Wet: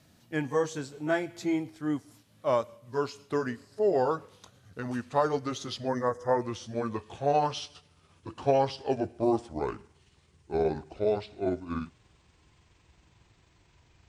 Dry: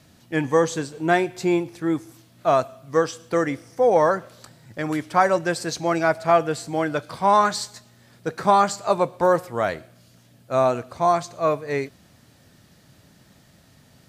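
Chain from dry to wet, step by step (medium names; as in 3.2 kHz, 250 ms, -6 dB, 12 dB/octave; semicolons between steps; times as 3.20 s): pitch bend over the whole clip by -11 st starting unshifted; time-frequency box 5.88–6.41 s, 2.1–4.8 kHz -18 dB; trim -7 dB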